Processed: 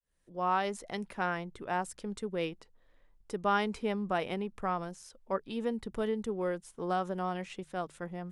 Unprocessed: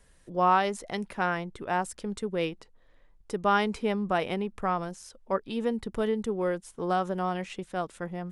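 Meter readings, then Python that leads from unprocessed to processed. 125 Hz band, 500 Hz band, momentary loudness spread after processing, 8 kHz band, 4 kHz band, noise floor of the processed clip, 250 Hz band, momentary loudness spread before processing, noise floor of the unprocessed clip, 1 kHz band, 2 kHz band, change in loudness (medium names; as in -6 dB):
-5.0 dB, -4.5 dB, 9 LU, -4.5 dB, -4.5 dB, -65 dBFS, -4.5 dB, 10 LU, -60 dBFS, -5.5 dB, -4.5 dB, -5.0 dB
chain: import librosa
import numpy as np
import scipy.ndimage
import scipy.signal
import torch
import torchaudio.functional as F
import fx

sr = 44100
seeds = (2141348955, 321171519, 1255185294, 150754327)

y = fx.fade_in_head(x, sr, length_s=0.7)
y = fx.hum_notches(y, sr, base_hz=50, count=3)
y = y * 10.0 ** (-4.5 / 20.0)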